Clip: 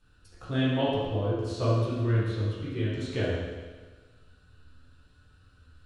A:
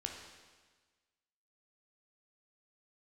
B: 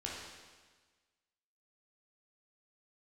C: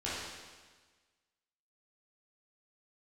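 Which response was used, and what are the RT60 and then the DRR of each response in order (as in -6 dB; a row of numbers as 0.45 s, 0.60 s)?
C; 1.4 s, 1.4 s, 1.4 s; 1.5 dB, -4.5 dB, -9.5 dB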